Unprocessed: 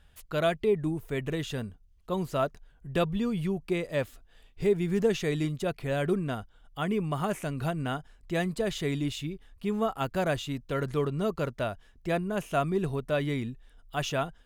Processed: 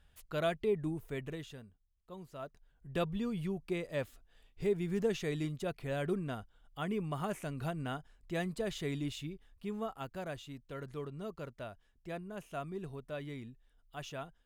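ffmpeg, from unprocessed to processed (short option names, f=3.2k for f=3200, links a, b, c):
-af "volume=4.5dB,afade=t=out:st=1.03:d=0.59:silence=0.266073,afade=t=in:st=2.38:d=0.63:silence=0.281838,afade=t=out:st=9.21:d=0.99:silence=0.473151"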